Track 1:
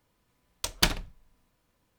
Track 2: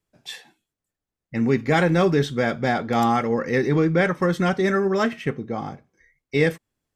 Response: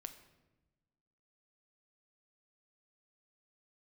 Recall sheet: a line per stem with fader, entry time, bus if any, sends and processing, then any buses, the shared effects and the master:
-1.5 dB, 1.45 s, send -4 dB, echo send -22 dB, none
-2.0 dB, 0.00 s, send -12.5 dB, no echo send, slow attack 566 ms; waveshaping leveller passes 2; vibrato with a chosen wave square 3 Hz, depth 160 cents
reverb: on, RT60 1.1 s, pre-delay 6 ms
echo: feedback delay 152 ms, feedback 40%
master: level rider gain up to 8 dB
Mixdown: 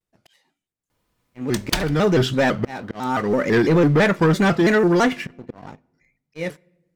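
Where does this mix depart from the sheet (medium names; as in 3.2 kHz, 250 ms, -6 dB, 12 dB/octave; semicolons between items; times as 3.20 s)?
stem 1: entry 1.45 s -> 0.90 s; master: missing level rider gain up to 8 dB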